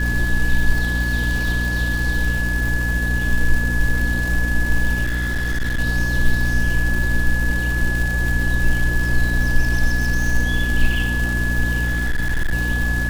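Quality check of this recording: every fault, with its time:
crackle 410/s -25 dBFS
hum 60 Hz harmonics 5 -22 dBFS
tone 1700 Hz -23 dBFS
5.03–5.8 clipped -17.5 dBFS
11.84–12.54 clipped -15.5 dBFS

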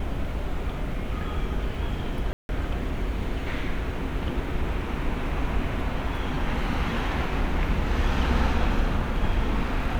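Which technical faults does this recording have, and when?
2.33–2.49 gap 0.161 s

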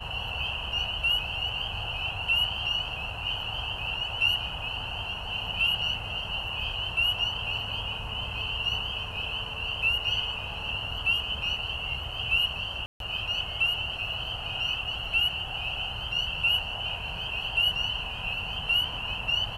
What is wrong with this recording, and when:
12.86–13 gap 0.142 s

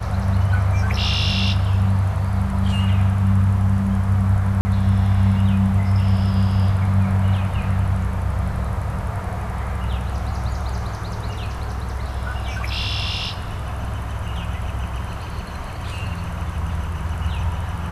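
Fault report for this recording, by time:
4.61–4.65 gap 40 ms

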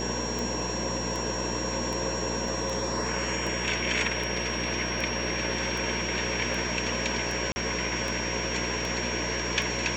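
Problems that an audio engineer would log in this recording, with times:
buzz 60 Hz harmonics 12 -35 dBFS
tick 78 rpm
tone 5600 Hz -34 dBFS
2.48 gap 2.7 ms
7.52–7.56 gap 40 ms

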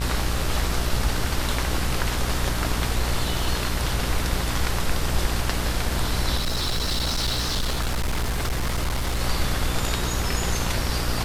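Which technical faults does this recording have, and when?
buzz 60 Hz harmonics 38 -28 dBFS
6.37–9.19 clipped -20.5 dBFS

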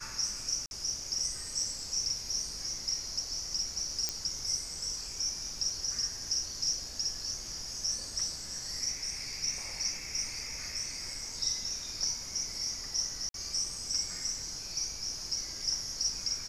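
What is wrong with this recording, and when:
0.66–0.71 gap 51 ms
4.09 pop -16 dBFS
13.29–13.34 gap 52 ms

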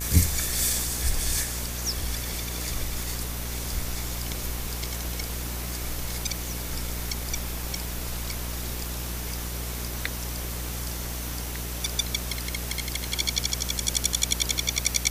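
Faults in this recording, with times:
buzz 60 Hz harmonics 27 -34 dBFS
crackle 11/s -38 dBFS

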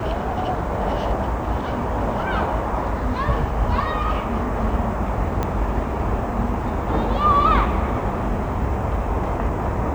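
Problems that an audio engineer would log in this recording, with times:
5.43 pop -11 dBFS

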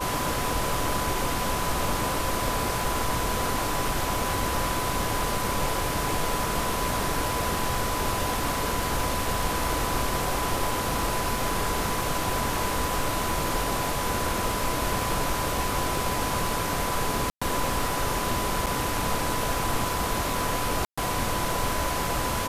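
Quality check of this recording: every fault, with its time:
crackle 22/s -32 dBFS
tone 1000 Hz -32 dBFS
17.3–17.41 gap 0.115 s
18.66–18.67 gap 6.6 ms
20.85–20.98 gap 0.125 s

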